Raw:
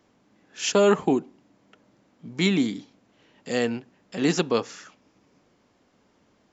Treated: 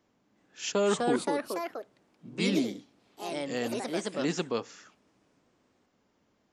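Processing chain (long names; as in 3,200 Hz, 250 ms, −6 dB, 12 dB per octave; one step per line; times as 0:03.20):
delay with pitch and tempo change per echo 371 ms, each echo +3 semitones, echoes 3
level −8 dB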